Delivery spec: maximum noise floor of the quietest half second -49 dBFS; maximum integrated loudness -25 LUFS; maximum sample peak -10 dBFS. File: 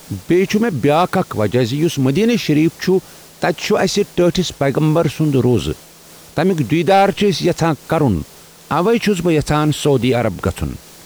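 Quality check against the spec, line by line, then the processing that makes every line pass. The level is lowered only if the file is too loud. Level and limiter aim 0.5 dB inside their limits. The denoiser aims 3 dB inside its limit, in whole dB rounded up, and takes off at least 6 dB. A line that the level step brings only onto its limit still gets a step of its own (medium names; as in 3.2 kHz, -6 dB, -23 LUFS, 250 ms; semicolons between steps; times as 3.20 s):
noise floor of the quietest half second -41 dBFS: fail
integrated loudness -16.0 LUFS: fail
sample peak -5.0 dBFS: fail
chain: trim -9.5 dB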